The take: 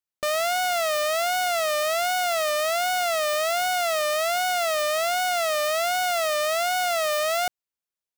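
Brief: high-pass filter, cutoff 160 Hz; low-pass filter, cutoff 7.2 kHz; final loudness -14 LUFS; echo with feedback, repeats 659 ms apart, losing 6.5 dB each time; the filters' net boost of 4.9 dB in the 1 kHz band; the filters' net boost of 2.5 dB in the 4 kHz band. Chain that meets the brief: high-pass 160 Hz; low-pass 7.2 kHz; peaking EQ 1 kHz +8.5 dB; peaking EQ 4 kHz +3 dB; feedback delay 659 ms, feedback 47%, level -6.5 dB; trim +5.5 dB

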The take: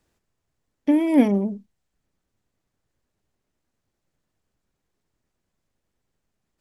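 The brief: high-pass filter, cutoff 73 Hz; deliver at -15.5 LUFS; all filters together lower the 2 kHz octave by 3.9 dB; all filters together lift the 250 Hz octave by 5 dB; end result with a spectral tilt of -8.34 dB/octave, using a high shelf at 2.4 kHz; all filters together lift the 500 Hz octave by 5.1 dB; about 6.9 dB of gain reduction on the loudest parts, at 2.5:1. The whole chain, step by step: high-pass 73 Hz; peaking EQ 250 Hz +4.5 dB; peaking EQ 500 Hz +5.5 dB; peaking EQ 2 kHz -3 dB; treble shelf 2.4 kHz -3.5 dB; compression 2.5:1, threshold -16 dBFS; trim +5 dB

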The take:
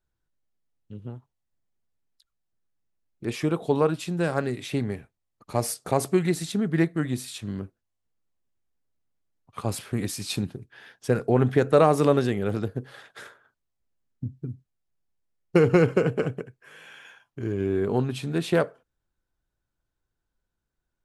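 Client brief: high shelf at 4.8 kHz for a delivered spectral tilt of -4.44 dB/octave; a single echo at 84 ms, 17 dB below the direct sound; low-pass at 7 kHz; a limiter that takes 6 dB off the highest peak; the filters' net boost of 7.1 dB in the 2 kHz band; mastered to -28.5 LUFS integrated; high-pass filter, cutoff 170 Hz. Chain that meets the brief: high-pass 170 Hz; low-pass 7 kHz; peaking EQ 2 kHz +8.5 dB; treble shelf 4.8 kHz +5 dB; peak limiter -9.5 dBFS; delay 84 ms -17 dB; trim -2 dB

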